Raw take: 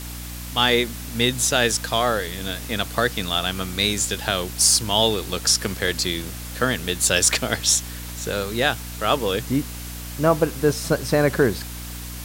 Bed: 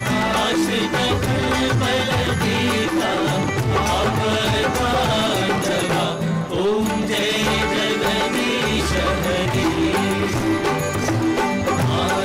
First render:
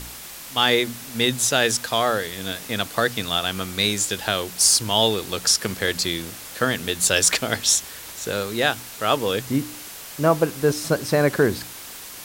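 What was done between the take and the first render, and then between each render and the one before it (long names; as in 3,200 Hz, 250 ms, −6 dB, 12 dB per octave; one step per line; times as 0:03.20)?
hum removal 60 Hz, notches 5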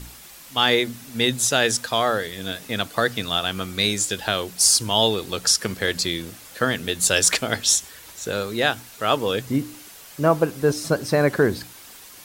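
broadband denoise 7 dB, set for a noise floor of −38 dBFS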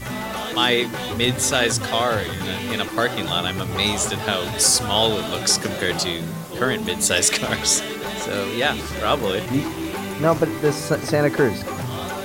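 mix in bed −9 dB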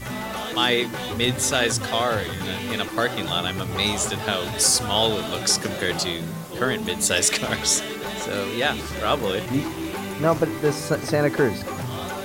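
level −2 dB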